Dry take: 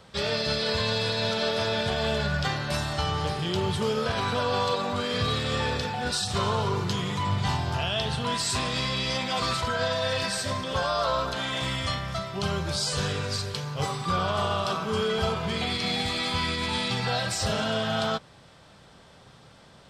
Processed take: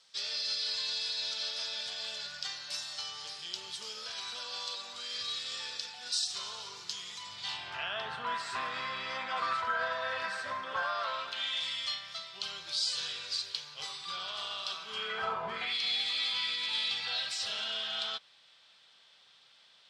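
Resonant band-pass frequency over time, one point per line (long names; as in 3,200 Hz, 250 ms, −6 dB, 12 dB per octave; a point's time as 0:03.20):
resonant band-pass, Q 1.7
0:07.32 5,400 Hz
0:07.96 1,400 Hz
0:10.73 1,400 Hz
0:11.64 4,000 Hz
0:14.84 4,000 Hz
0:15.45 860 Hz
0:15.78 3,500 Hz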